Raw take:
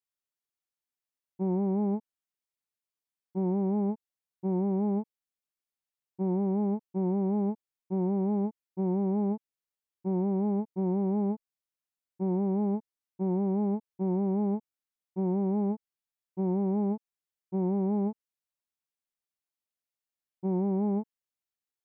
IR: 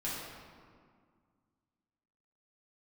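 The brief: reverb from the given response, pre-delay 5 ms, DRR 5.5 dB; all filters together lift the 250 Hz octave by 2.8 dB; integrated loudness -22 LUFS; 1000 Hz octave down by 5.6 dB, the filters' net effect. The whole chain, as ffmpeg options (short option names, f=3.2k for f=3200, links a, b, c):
-filter_complex "[0:a]equalizer=f=250:t=o:g=4.5,equalizer=f=1k:t=o:g=-8,asplit=2[a][b];[1:a]atrim=start_sample=2205,adelay=5[c];[b][c]afir=irnorm=-1:irlink=0,volume=-9.5dB[d];[a][d]amix=inputs=2:normalize=0,volume=3dB"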